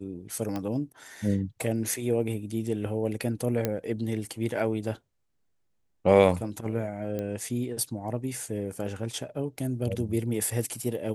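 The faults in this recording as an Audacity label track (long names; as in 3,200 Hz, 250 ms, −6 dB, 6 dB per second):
0.560000	0.560000	click −19 dBFS
3.650000	3.650000	click −12 dBFS
7.190000	7.190000	click −20 dBFS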